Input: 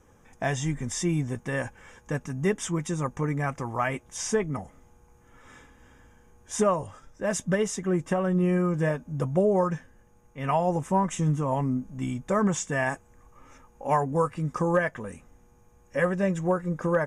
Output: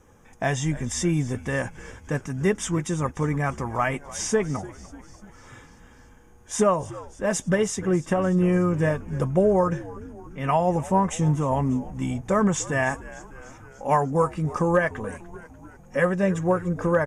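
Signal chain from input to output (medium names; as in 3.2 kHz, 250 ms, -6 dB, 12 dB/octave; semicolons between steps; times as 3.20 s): frequency-shifting echo 295 ms, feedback 64%, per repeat -79 Hz, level -18 dB; trim +3 dB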